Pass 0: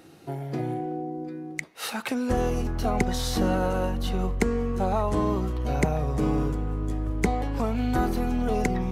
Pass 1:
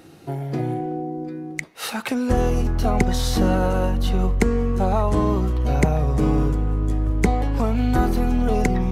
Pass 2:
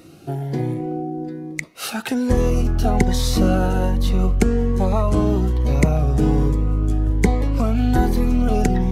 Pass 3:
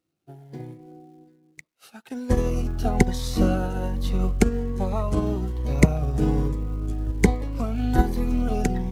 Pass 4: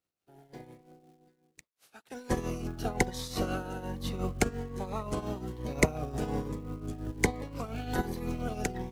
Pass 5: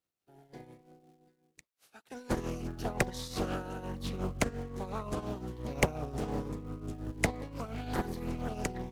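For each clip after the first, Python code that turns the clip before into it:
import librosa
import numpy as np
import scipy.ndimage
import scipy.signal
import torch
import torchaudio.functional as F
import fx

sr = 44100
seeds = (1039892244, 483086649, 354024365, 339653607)

y1 = fx.low_shelf(x, sr, hz=140.0, db=5.0)
y1 = y1 * librosa.db_to_amplitude(3.5)
y2 = fx.notch_cascade(y1, sr, direction='rising', hz=1.2)
y2 = y2 * librosa.db_to_amplitude(2.5)
y3 = fx.dmg_crackle(y2, sr, seeds[0], per_s=550.0, level_db=-39.0)
y3 = fx.upward_expand(y3, sr, threshold_db=-36.0, expansion=2.5)
y3 = y3 * librosa.db_to_amplitude(1.5)
y4 = fx.spec_clip(y3, sr, under_db=15)
y4 = fx.tremolo_shape(y4, sr, shape='triangle', hz=5.7, depth_pct=65)
y4 = y4 * librosa.db_to_amplitude(-8.0)
y5 = fx.doppler_dist(y4, sr, depth_ms=0.92)
y5 = y5 * librosa.db_to_amplitude(-2.0)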